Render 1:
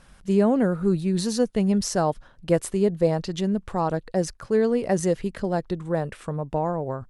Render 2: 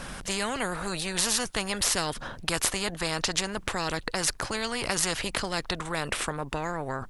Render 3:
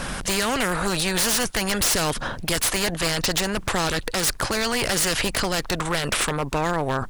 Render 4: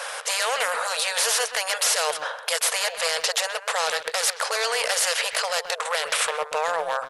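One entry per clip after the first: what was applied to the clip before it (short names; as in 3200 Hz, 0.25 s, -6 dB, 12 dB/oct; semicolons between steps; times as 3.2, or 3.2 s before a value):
low shelf 100 Hz +10.5 dB; spectral compressor 4:1
in parallel at -1 dB: limiter -16 dBFS, peak gain reduction 8.5 dB; on the sum: wavefolder -18.5 dBFS; gain +3.5 dB
FFT band-pass 440–12000 Hz; speakerphone echo 0.13 s, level -10 dB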